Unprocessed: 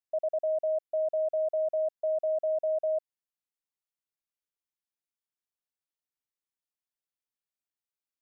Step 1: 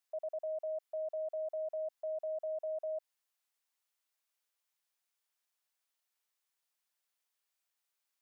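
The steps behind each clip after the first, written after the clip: high-pass 620 Hz 12 dB/octave; in parallel at -2 dB: compressor with a negative ratio -42 dBFS, ratio -1; on the sum: peak limiter -30.5 dBFS, peak gain reduction 5.5 dB; trim -3.5 dB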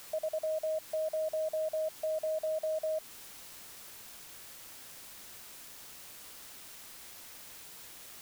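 in parallel at -5 dB: word length cut 8-bit, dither triangular; on the sum: compression 1.5:1, threshold -39 dBFS, peak gain reduction 3 dB; trim +3.5 dB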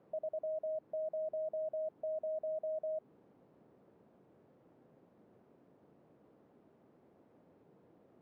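Butterworth band-pass 260 Hz, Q 0.65; trim +1 dB

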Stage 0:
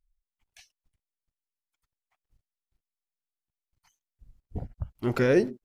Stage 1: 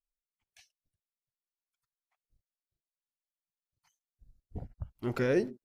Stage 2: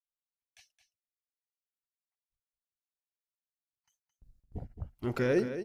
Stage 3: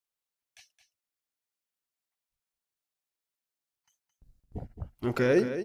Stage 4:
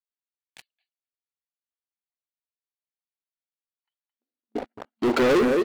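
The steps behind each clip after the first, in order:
spectral noise reduction 15 dB; trim -6 dB
gate with hold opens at -57 dBFS; delay 218 ms -10.5 dB
bass shelf 120 Hz -5 dB; trim +4.5 dB
FFT band-pass 220–4700 Hz; speakerphone echo 250 ms, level -27 dB; waveshaping leveller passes 5; trim -2.5 dB

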